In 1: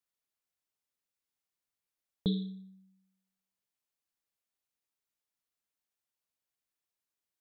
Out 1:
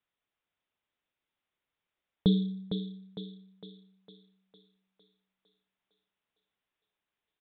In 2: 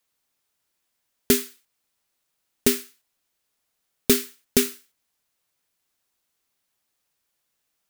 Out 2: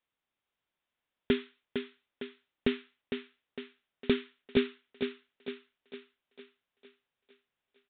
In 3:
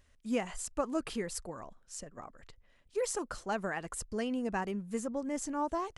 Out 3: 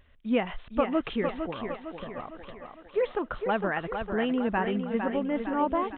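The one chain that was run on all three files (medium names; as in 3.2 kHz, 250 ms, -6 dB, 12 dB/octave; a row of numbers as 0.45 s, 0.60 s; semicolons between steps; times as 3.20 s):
on a send: thinning echo 456 ms, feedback 55%, high-pass 190 Hz, level -6 dB; on the sum: resampled via 8 kHz; peak normalisation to -12 dBFS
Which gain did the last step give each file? +6.5 dB, -6.5 dB, +6.5 dB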